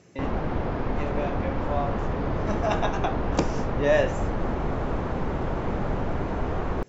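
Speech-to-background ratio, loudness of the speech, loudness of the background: 0.0 dB, −29.5 LKFS, −29.5 LKFS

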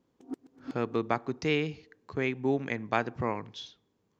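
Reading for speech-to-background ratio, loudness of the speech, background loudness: 14.0 dB, −32.0 LKFS, −46.0 LKFS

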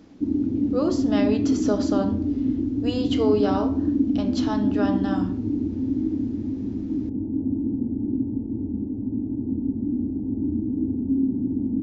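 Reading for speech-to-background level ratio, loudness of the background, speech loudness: −2.5 dB, −25.0 LKFS, −27.5 LKFS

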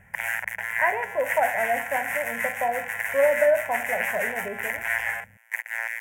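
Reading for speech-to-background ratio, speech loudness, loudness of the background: 1.5 dB, −26.5 LKFS, −28.0 LKFS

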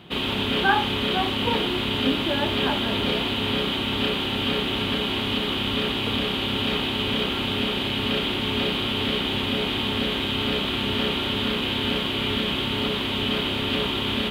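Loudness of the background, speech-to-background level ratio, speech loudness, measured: −24.0 LKFS, −4.5 dB, −28.5 LKFS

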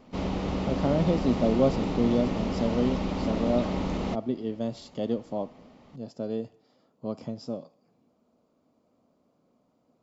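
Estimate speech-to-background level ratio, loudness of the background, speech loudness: 0.5 dB, −30.5 LKFS, −30.0 LKFS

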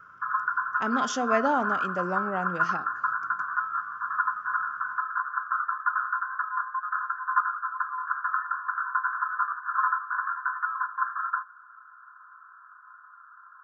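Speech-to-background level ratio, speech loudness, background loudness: −1.0 dB, −30.0 LKFS, −29.0 LKFS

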